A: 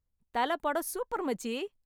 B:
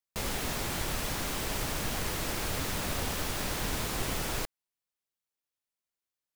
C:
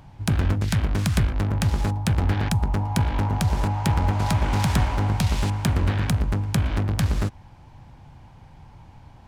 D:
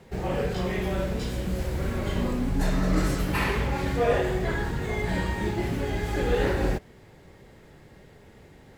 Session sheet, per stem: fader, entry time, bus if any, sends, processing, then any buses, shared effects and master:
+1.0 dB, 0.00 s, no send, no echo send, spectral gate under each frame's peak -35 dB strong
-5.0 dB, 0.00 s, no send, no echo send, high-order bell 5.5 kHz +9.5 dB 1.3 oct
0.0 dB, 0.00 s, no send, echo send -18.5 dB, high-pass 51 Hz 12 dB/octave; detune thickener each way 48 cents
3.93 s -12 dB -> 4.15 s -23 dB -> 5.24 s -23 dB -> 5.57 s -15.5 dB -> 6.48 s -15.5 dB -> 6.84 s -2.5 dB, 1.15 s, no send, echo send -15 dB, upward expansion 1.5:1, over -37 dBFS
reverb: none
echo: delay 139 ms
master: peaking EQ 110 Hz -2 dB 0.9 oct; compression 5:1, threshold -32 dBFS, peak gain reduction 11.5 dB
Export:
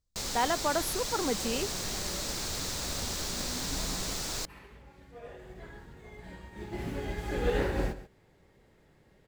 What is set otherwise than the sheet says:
stem C: muted; master: missing compression 5:1, threshold -32 dBFS, peak gain reduction 11.5 dB

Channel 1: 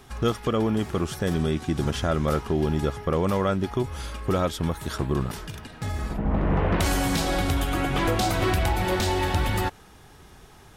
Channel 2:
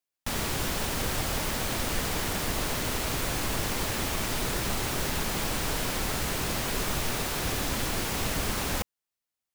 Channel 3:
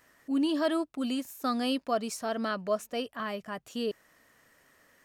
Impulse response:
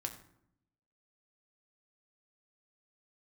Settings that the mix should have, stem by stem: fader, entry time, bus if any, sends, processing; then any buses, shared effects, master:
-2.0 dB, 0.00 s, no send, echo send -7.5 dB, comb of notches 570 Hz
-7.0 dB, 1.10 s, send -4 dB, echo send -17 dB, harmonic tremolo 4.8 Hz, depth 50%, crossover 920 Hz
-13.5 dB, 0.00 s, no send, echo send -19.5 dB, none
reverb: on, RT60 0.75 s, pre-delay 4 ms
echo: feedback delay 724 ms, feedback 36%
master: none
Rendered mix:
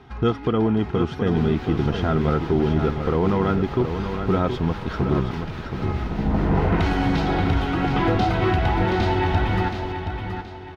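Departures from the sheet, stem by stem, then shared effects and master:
stem 1 -2.0 dB -> +4.5 dB; master: extra distance through air 270 m

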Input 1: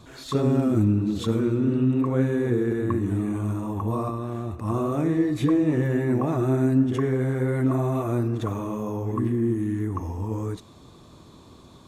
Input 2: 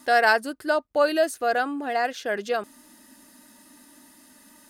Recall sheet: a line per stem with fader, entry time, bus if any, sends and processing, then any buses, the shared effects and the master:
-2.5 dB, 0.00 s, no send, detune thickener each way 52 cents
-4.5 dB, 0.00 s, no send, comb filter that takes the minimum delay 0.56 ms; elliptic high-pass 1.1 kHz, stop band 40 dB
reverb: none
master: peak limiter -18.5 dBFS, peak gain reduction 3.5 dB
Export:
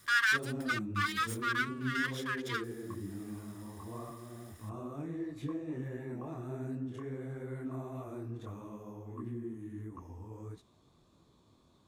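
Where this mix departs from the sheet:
stem 1 -2.5 dB -> -13.5 dB; master: missing peak limiter -18.5 dBFS, peak gain reduction 3.5 dB

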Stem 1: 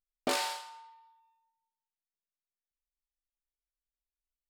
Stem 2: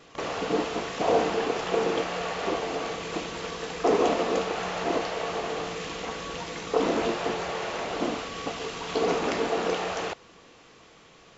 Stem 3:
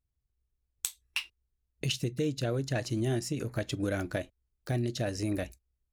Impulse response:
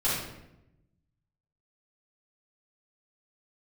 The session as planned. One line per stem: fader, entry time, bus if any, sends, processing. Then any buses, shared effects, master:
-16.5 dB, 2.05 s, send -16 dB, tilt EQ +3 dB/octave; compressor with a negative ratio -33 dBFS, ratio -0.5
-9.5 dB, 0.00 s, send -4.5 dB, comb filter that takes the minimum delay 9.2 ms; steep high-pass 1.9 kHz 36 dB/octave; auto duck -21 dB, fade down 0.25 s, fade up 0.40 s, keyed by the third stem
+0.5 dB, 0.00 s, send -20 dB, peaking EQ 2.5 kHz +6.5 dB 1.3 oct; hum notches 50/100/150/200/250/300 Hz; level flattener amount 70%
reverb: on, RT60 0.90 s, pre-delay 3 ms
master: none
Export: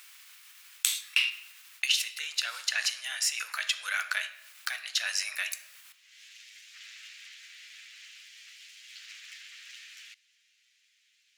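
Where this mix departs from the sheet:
stem 2: send off; master: extra inverse Chebyshev high-pass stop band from 350 Hz, stop band 60 dB

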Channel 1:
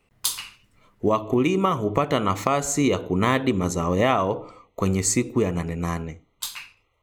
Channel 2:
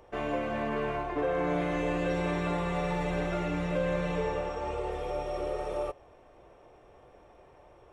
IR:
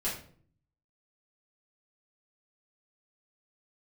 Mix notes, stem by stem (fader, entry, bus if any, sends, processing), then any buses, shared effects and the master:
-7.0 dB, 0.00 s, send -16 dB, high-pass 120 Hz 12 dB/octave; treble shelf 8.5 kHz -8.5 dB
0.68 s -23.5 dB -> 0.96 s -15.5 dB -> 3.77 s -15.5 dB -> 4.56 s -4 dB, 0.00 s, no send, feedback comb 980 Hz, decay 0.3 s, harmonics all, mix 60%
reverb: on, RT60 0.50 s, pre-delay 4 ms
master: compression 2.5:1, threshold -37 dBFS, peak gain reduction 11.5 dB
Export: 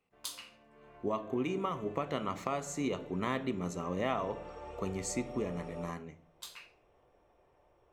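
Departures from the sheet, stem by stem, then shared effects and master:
stem 1 -7.0 dB -> -14.0 dB; master: missing compression 2.5:1, threshold -37 dBFS, peak gain reduction 11.5 dB

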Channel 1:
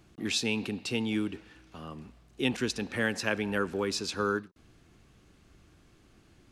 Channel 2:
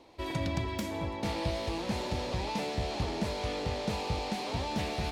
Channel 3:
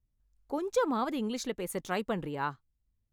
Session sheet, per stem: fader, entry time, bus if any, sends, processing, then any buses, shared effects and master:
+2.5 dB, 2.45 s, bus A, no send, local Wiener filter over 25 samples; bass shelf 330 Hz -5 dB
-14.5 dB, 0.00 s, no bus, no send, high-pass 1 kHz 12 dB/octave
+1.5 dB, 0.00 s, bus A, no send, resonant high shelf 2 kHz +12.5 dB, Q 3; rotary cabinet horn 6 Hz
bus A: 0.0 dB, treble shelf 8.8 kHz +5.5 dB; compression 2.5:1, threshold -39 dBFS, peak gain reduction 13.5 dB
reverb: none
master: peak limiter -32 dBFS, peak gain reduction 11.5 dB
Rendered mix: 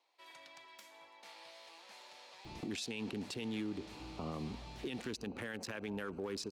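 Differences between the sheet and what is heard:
stem 1 +2.5 dB -> +13.5 dB; stem 3: muted

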